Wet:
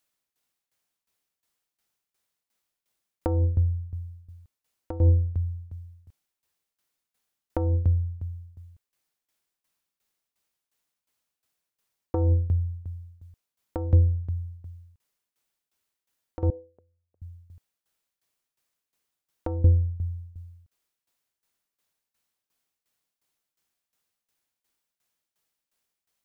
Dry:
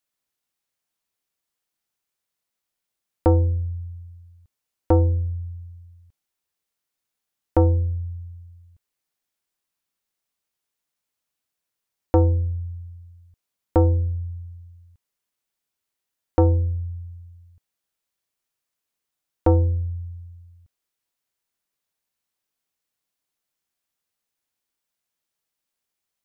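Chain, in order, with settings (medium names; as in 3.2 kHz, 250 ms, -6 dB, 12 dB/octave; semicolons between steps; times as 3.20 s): compressor with a negative ratio -19 dBFS, ratio -0.5; tremolo saw down 2.8 Hz, depth 85%; 16.50–17.22 s: ladder band-pass 590 Hz, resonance 50%; trim +3.5 dB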